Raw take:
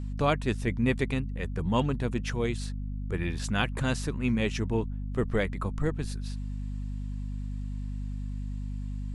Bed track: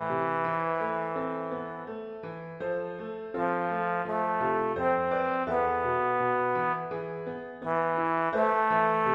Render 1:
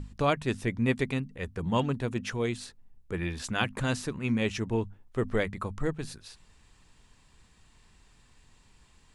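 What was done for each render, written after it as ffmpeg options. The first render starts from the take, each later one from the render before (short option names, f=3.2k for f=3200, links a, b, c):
-af "bandreject=f=50:t=h:w=6,bandreject=f=100:t=h:w=6,bandreject=f=150:t=h:w=6,bandreject=f=200:t=h:w=6,bandreject=f=250:t=h:w=6"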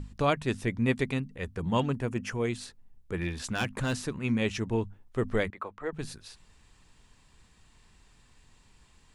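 -filter_complex "[0:a]asettb=1/sr,asplit=3[a][b][c];[a]atrim=end=1.944[d];[b]atrim=start=1.94:end=2.5,asetpts=PTS-STARTPTS,afade=t=in:d=0.004:c=qsin,afade=t=out:st=0.556:d=0.004:c=qsin,equalizer=f=3.8k:t=o:w=0.32:g=-13[e];[c]atrim=start=2.496[f];[d][e]acrossfade=d=0.004:c1=hsin:c2=qsin[g];[g][f]acrossfade=d=0.004:c1=qsin:c2=hsin,asettb=1/sr,asplit=3[h][i][j];[h]atrim=end=3.164[k];[i]atrim=start=3.16:end=4.03,asetpts=PTS-STARTPTS,afade=t=in:d=0.004:c=qsin,afade=t=out:st=0.866:d=0.004:c=qsin,asoftclip=type=hard:threshold=-23.5dB[l];[j]atrim=start=4.026[m];[k][l]acrossfade=d=0.004:c1=hsin:c2=qsin[n];[n][m]acrossfade=d=0.004:c1=qsin:c2=hsin,asettb=1/sr,asplit=3[o][p][q];[o]atrim=end=5.504[r];[p]atrim=start=5.5:end=5.93,asetpts=PTS-STARTPTS,afade=t=in:d=0.004:c=qsin,afade=t=out:st=0.426:d=0.004:c=qsin,acrossover=split=360 3100:gain=0.0891 1 0.141[s][t][u];[s][t][u]amix=inputs=3:normalize=0[v];[q]atrim=start=5.926[w];[r][v]acrossfade=d=0.004:c1=hsin:c2=qsin[x];[x][w]acrossfade=d=0.004:c1=qsin:c2=hsin"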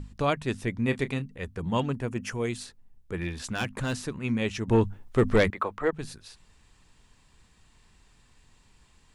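-filter_complex "[0:a]asettb=1/sr,asplit=3[a][b][c];[a]atrim=end=0.764[d];[b]atrim=start=0.76:end=1.26,asetpts=PTS-STARTPTS,afade=t=in:d=0.004:c=qsin,afade=t=out:st=0.496:d=0.004:c=qsin,asplit=2[e][f];[f]adelay=29,volume=-13dB[g];[e][g]amix=inputs=2:normalize=0,atrim=end_sample=22050[h];[c]atrim=start=1.256[i];[d][h]acrossfade=d=0.004:c1=hsin:c2=qsin[j];[j][i]acrossfade=d=0.004:c1=qsin:c2=hsin,asettb=1/sr,asplit=3[k][l][m];[k]atrim=end=2.224[n];[l]atrim=start=2.22:end=2.63,asetpts=PTS-STARTPTS,afade=t=in:d=0.004:c=qsin,afade=t=out:st=0.406:d=0.004:c=qsin,highshelf=f=6.4k:g=7[o];[m]atrim=start=2.626[p];[n][o]acrossfade=d=0.004:c1=hsin:c2=qsin[q];[q][p]acrossfade=d=0.004:c1=qsin:c2=hsin,asettb=1/sr,asplit=3[r][s][t];[r]atrim=end=4.684[u];[s]atrim=start=4.68:end=5.91,asetpts=PTS-STARTPTS,afade=t=in:d=0.004:c=qsin,afade=t=out:st=1.226:d=0.004:c=qsin,aeval=exprs='0.2*sin(PI/2*1.78*val(0)/0.2)':c=same[v];[t]atrim=start=5.906[w];[u][v]acrossfade=d=0.004:c1=hsin:c2=qsin[x];[x][w]acrossfade=d=0.004:c1=qsin:c2=hsin"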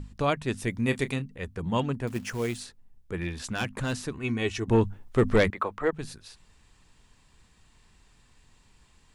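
-filter_complex "[0:a]asettb=1/sr,asplit=3[a][b][c];[a]atrim=end=0.574[d];[b]atrim=start=0.57:end=1.16,asetpts=PTS-STARTPTS,afade=t=in:d=0.004:c=qsin,afade=t=out:st=0.586:d=0.004:c=qsin,highshelf=f=5.6k:g=10.5[e];[c]atrim=start=1.156[f];[d][e]acrossfade=d=0.004:c1=hsin:c2=qsin[g];[g][f]acrossfade=d=0.004:c1=qsin:c2=hsin,asettb=1/sr,asplit=3[h][i][j];[h]atrim=end=2.074[k];[i]atrim=start=2.07:end=2.6,asetpts=PTS-STARTPTS,afade=t=in:d=0.004:c=qsin,afade=t=out:st=0.526:d=0.004:c=qsin,acrusher=bits=4:mode=log:mix=0:aa=0.000001[l];[j]atrim=start=2.596[m];[k][l]acrossfade=d=0.004:c1=hsin:c2=qsin[n];[n][m]acrossfade=d=0.004:c1=qsin:c2=hsin,asettb=1/sr,asplit=3[o][p][q];[o]atrim=end=4.134[r];[p]atrim=start=4.13:end=4.68,asetpts=PTS-STARTPTS,afade=t=in:d=0.004:c=qsin,afade=t=out:st=0.546:d=0.004:c=qsin,aecho=1:1:2.7:0.59,atrim=end_sample=24255[s];[q]atrim=start=4.676[t];[r][s]acrossfade=d=0.004:c1=hsin:c2=qsin[u];[u][t]acrossfade=d=0.004:c1=qsin:c2=hsin"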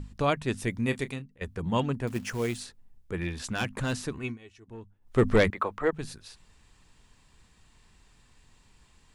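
-filter_complex "[0:a]asplit=4[a][b][c][d];[a]atrim=end=1.41,asetpts=PTS-STARTPTS,afade=t=out:st=0.47:d=0.94:c=qsin:silence=0.133352[e];[b]atrim=start=1.41:end=4.38,asetpts=PTS-STARTPTS,afade=t=in:d=0.004:c=hsin:silence=0.133352,afade=t=out:st=2.79:d=0.18:silence=0.0749894[f];[c]atrim=start=4.38:end=5.01,asetpts=PTS-STARTPTS,volume=-22.5dB[g];[d]atrim=start=5.01,asetpts=PTS-STARTPTS,afade=t=in:d=0.18:silence=0.0749894[h];[e][f][g][h]concat=n=4:v=0:a=1"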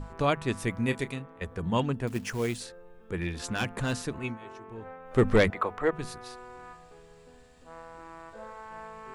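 -filter_complex "[1:a]volume=-19dB[a];[0:a][a]amix=inputs=2:normalize=0"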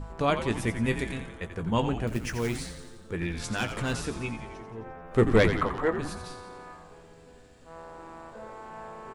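-filter_complex "[0:a]asplit=2[a][b];[b]adelay=18,volume=-11dB[c];[a][c]amix=inputs=2:normalize=0,asplit=9[d][e][f][g][h][i][j][k][l];[e]adelay=87,afreqshift=-95,volume=-9dB[m];[f]adelay=174,afreqshift=-190,volume=-13dB[n];[g]adelay=261,afreqshift=-285,volume=-17dB[o];[h]adelay=348,afreqshift=-380,volume=-21dB[p];[i]adelay=435,afreqshift=-475,volume=-25.1dB[q];[j]adelay=522,afreqshift=-570,volume=-29.1dB[r];[k]adelay=609,afreqshift=-665,volume=-33.1dB[s];[l]adelay=696,afreqshift=-760,volume=-37.1dB[t];[d][m][n][o][p][q][r][s][t]amix=inputs=9:normalize=0"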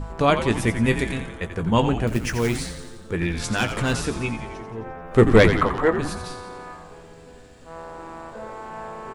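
-af "volume=7dB"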